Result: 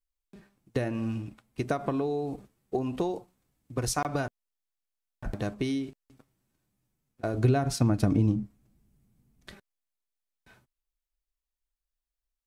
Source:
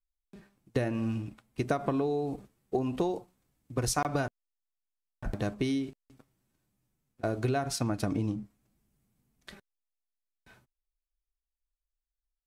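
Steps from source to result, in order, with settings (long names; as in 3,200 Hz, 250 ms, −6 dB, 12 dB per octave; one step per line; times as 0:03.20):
0:07.34–0:09.52: low-shelf EQ 340 Hz +9.5 dB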